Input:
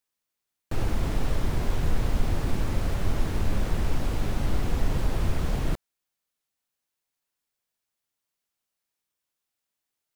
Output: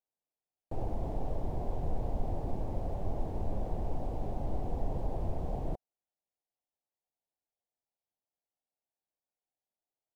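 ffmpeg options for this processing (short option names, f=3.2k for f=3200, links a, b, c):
-af "firequalizer=gain_entry='entry(220,0);entry(740,9);entry(1300,-14)':delay=0.05:min_phase=1,volume=-9dB"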